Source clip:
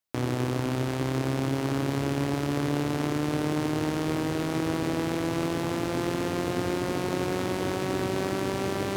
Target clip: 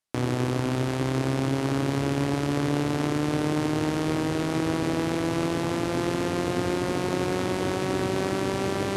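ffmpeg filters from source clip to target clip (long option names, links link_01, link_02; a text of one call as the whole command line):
ffmpeg -i in.wav -af "lowpass=frequency=12000:width=0.5412,lowpass=frequency=12000:width=1.3066,volume=2dB" out.wav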